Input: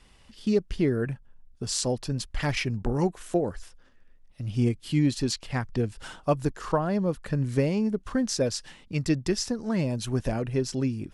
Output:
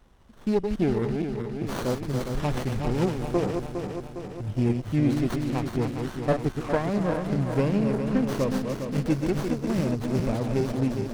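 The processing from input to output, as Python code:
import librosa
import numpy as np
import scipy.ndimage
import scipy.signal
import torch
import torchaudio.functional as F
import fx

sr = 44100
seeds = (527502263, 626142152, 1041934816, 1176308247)

y = fx.reverse_delay_fb(x, sr, ms=204, feedback_pct=76, wet_db=-5.5)
y = fx.running_max(y, sr, window=17)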